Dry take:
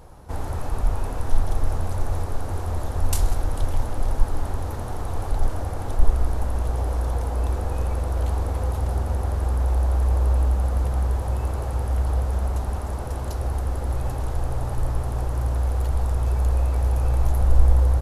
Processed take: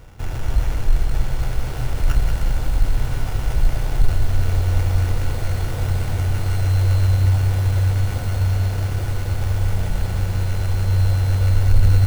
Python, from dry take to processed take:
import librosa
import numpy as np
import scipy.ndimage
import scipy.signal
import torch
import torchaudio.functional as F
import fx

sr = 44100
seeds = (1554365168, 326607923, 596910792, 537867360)

p1 = np.r_[np.sort(x[:len(x) // 16 * 16].reshape(-1, 16), axis=1).ravel(), x[len(x) // 16 * 16:]]
p2 = fx.low_shelf(p1, sr, hz=110.0, db=5.0)
p3 = fx.stretch_grains(p2, sr, factor=0.67, grain_ms=23.0)
p4 = fx.sample_hold(p3, sr, seeds[0], rate_hz=4200.0, jitter_pct=0)
p5 = 10.0 ** (-6.5 / 20.0) * np.tanh(p4 / 10.0 ** (-6.5 / 20.0))
p6 = p5 + fx.echo_diffused(p5, sr, ms=1189, feedback_pct=51, wet_db=-7.5, dry=0)
y = fx.echo_crushed(p6, sr, ms=189, feedback_pct=55, bits=6, wet_db=-7.0)